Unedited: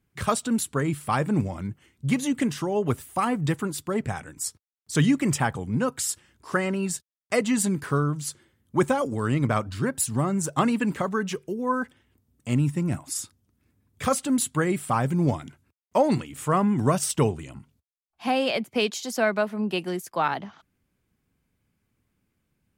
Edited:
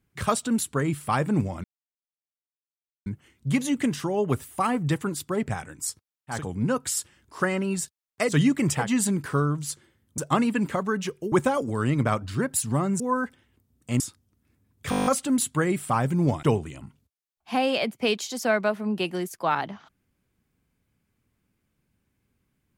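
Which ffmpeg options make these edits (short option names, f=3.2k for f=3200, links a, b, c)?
-filter_complex "[0:a]asplit=18[a][b][c][d][e][f][g][h][i][j][k][l][m][n][o][p][q][r];[a]atrim=end=1.64,asetpts=PTS-STARTPTS,afade=t=out:st=1.636:d=0.004:c=hsin,apad=pad_dur=1.42[s];[b]atrim=start=1.64:end=5.01,asetpts=PTS-STARTPTS,afade=t=in:d=0.004:c=hsin[t];[c]atrim=start=5.39:end=7.5[u];[d]atrim=start=4.85:end=5.55[v];[e]atrim=start=7.34:end=8.762[w];[f]atrim=start=10.438:end=11.582[x];[g]atrim=start=8.758:end=10.442[y];[h]atrim=start=11.578:end=12.582[z];[i]atrim=start=13.158:end=14.082[aa];[j]atrim=start=14.058:end=14.082[ab];[k]atrim=start=14.058:end=14.082[ac];[l]atrim=start=14.058:end=14.082[ad];[m]atrim=start=14.058:end=14.082[ae];[n]atrim=start=14.058:end=14.082[af];[o]atrim=start=14.058:end=14.082[ag];[p]atrim=start=14.058:end=14.082[ah];[q]atrim=start=14.058:end=15.432[ai];[r]atrim=start=17.158[aj];[s][t]concat=n=2:v=0:a=1[ak];[ak][u]acrossfade=d=0.16:c1=tri:c2=tri[al];[al][v]acrossfade=d=0.16:c1=tri:c2=tri[am];[am][w]acrossfade=d=0.16:c1=tri:c2=tri[an];[an][x]acrossfade=d=0.004:c1=hsin:c2=hsin[ao];[ao][y]acrossfade=d=0.004:c1=hsin:c2=hsin[ap];[ap][z]acrossfade=d=0.004:c1=hsin:c2=hsin[aq];[aq][aa]acrossfade=d=0.004:c1=hsin:c2=hsin[ar];[ar][ab]acrossfade=d=0.004:c1=hsin:c2=hsin[as];[as][ac]acrossfade=d=0.004:c1=hsin:c2=hsin[at];[at][ad]acrossfade=d=0.004:c1=hsin:c2=hsin[au];[au][ae]acrossfade=d=0.004:c1=hsin:c2=hsin[av];[av][af]acrossfade=d=0.004:c1=hsin:c2=hsin[aw];[aw][ag]acrossfade=d=0.004:c1=hsin:c2=hsin[ax];[ax][ah]acrossfade=d=0.004:c1=hsin:c2=hsin[ay];[ay][ai]acrossfade=d=0.004:c1=hsin:c2=hsin[az];[az][aj]acrossfade=d=0.004:c1=hsin:c2=hsin"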